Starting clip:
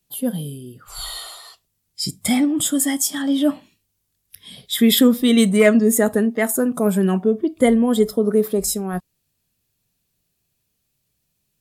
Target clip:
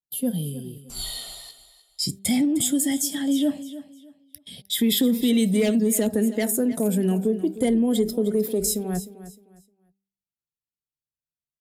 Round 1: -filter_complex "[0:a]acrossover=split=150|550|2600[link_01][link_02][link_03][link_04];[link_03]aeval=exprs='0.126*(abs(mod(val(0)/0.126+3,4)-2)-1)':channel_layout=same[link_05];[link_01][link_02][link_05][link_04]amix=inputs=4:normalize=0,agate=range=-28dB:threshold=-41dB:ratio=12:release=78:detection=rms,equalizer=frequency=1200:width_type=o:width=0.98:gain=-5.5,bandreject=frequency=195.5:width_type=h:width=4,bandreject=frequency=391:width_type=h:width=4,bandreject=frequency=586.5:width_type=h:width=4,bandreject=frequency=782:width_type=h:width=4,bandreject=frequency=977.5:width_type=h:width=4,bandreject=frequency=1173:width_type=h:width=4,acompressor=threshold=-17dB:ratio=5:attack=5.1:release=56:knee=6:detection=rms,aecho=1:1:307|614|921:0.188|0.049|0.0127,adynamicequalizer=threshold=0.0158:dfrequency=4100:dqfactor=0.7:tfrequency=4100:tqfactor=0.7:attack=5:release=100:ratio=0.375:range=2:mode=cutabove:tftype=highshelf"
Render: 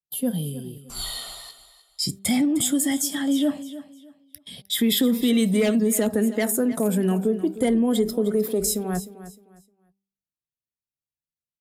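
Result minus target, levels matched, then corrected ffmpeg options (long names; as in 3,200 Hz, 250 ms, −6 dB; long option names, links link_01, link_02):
1,000 Hz band +3.5 dB
-filter_complex "[0:a]acrossover=split=150|550|2600[link_01][link_02][link_03][link_04];[link_03]aeval=exprs='0.126*(abs(mod(val(0)/0.126+3,4)-2)-1)':channel_layout=same[link_05];[link_01][link_02][link_05][link_04]amix=inputs=4:normalize=0,agate=range=-28dB:threshold=-41dB:ratio=12:release=78:detection=rms,equalizer=frequency=1200:width_type=o:width=0.98:gain=-15.5,bandreject=frequency=195.5:width_type=h:width=4,bandreject=frequency=391:width_type=h:width=4,bandreject=frequency=586.5:width_type=h:width=4,bandreject=frequency=782:width_type=h:width=4,bandreject=frequency=977.5:width_type=h:width=4,bandreject=frequency=1173:width_type=h:width=4,acompressor=threshold=-17dB:ratio=5:attack=5.1:release=56:knee=6:detection=rms,aecho=1:1:307|614|921:0.188|0.049|0.0127,adynamicequalizer=threshold=0.0158:dfrequency=4100:dqfactor=0.7:tfrequency=4100:tqfactor=0.7:attack=5:release=100:ratio=0.375:range=2:mode=cutabove:tftype=highshelf"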